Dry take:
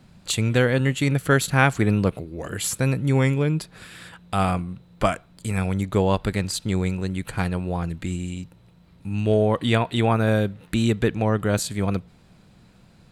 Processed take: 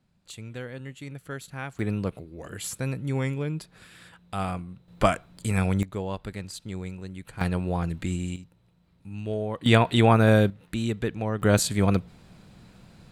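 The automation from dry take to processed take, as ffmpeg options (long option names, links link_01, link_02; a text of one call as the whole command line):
ffmpeg -i in.wav -af "asetnsamples=nb_out_samples=441:pad=0,asendcmd='1.79 volume volume -8dB;4.88 volume volume 0dB;5.83 volume volume -11.5dB;7.41 volume volume -1dB;8.36 volume volume -10.5dB;9.66 volume volume 2dB;10.5 volume volume -7dB;11.42 volume volume 2dB',volume=-18dB" out.wav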